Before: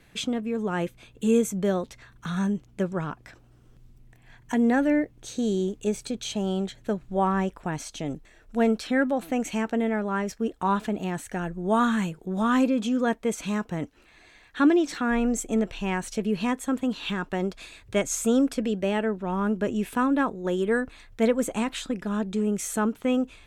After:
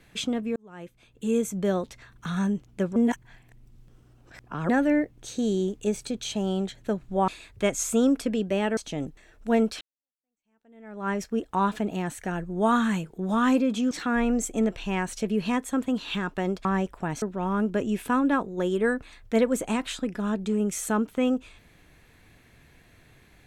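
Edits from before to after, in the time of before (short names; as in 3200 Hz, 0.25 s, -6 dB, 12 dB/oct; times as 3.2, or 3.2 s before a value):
0.56–1.76 fade in
2.96–4.69 reverse
7.28–7.85 swap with 17.6–19.09
8.89–10.17 fade in exponential
12.99–14.86 cut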